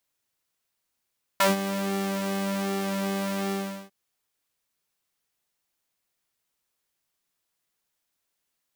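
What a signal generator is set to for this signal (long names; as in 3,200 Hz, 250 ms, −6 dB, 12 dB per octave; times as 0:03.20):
subtractive patch with pulse-width modulation G3, oscillator 2 level −14.5 dB, noise −13.5 dB, filter highpass, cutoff 280 Hz, Q 1.4, filter decay 0.10 s, filter sustain 0%, attack 5.8 ms, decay 0.15 s, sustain −14 dB, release 0.40 s, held 2.10 s, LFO 1.3 Hz, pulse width 48%, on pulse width 10%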